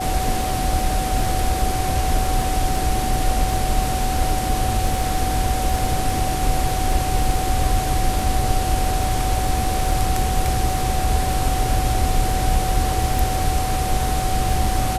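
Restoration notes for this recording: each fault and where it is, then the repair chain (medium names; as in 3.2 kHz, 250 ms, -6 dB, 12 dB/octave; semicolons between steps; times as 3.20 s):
crackle 21 per s -24 dBFS
whine 750 Hz -24 dBFS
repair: de-click; band-stop 750 Hz, Q 30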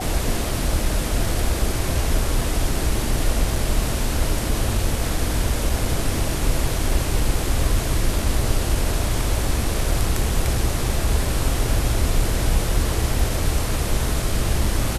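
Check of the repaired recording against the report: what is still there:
nothing left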